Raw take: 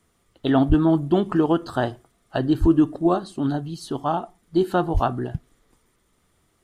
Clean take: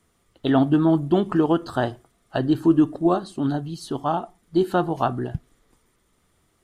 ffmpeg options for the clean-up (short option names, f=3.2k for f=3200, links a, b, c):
-filter_complex "[0:a]asplit=3[a][b][c];[a]afade=t=out:st=0.68:d=0.02[d];[b]highpass=f=140:w=0.5412,highpass=f=140:w=1.3066,afade=t=in:st=0.68:d=0.02,afade=t=out:st=0.8:d=0.02[e];[c]afade=t=in:st=0.8:d=0.02[f];[d][e][f]amix=inputs=3:normalize=0,asplit=3[g][h][i];[g]afade=t=out:st=2.6:d=0.02[j];[h]highpass=f=140:w=0.5412,highpass=f=140:w=1.3066,afade=t=in:st=2.6:d=0.02,afade=t=out:st=2.72:d=0.02[k];[i]afade=t=in:st=2.72:d=0.02[l];[j][k][l]amix=inputs=3:normalize=0,asplit=3[m][n][o];[m]afade=t=out:st=4.93:d=0.02[p];[n]highpass=f=140:w=0.5412,highpass=f=140:w=1.3066,afade=t=in:st=4.93:d=0.02,afade=t=out:st=5.05:d=0.02[q];[o]afade=t=in:st=5.05:d=0.02[r];[p][q][r]amix=inputs=3:normalize=0"